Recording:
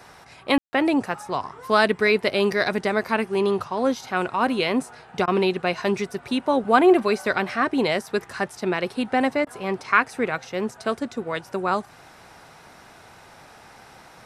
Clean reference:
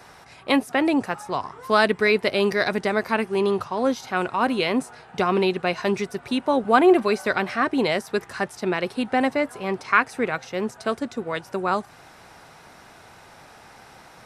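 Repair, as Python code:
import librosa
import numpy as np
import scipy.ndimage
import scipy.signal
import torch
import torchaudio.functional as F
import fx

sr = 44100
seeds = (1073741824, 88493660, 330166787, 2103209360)

y = fx.fix_ambience(x, sr, seeds[0], print_start_s=11.85, print_end_s=12.35, start_s=0.58, end_s=0.73)
y = fx.fix_interpolate(y, sr, at_s=(5.26, 9.45), length_ms=15.0)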